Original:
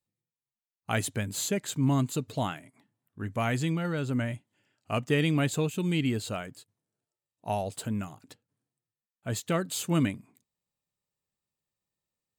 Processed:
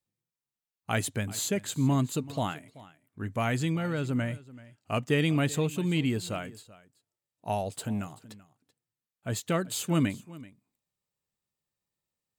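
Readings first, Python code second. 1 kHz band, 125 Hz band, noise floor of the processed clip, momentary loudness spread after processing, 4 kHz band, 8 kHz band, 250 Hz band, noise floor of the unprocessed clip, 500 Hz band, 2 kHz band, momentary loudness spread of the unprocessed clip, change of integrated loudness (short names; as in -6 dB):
0.0 dB, 0.0 dB, under -85 dBFS, 16 LU, 0.0 dB, 0.0 dB, 0.0 dB, under -85 dBFS, 0.0 dB, 0.0 dB, 14 LU, 0.0 dB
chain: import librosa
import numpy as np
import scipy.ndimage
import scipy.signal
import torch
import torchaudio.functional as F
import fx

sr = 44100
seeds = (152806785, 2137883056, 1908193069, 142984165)

y = x + 10.0 ** (-19.5 / 20.0) * np.pad(x, (int(383 * sr / 1000.0), 0))[:len(x)]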